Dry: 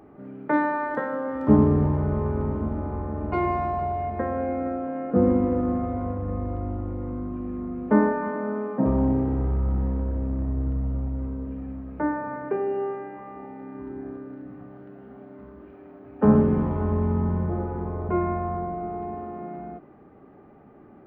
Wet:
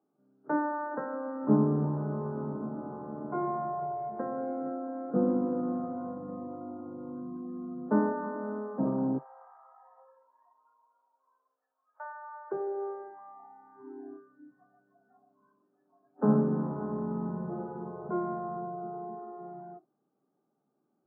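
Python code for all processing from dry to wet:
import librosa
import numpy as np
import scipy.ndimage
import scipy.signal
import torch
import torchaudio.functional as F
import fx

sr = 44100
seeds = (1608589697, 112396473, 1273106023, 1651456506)

y = fx.chain(x, sr, fx.bessel_highpass(hz=1000.0, order=6),
    fx.echo_alternate(ms=113, hz=910.0, feedback_pct=70, wet_db=-9.0), at=(9.18, 12.52))
y = scipy.signal.sosfilt(scipy.signal.cheby1(4, 1.0, [140.0, 1500.0], 'bandpass', fs=sr, output='sos'), y)
y = fx.noise_reduce_blind(y, sr, reduce_db=21)
y = F.gain(torch.from_numpy(y), -6.5).numpy()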